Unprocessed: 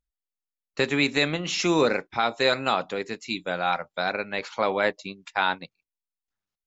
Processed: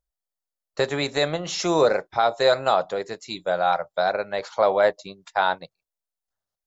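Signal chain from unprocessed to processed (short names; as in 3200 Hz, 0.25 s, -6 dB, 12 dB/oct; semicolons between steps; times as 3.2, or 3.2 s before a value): fifteen-band EQ 250 Hz -10 dB, 630 Hz +8 dB, 2500 Hz -10 dB; gain +1.5 dB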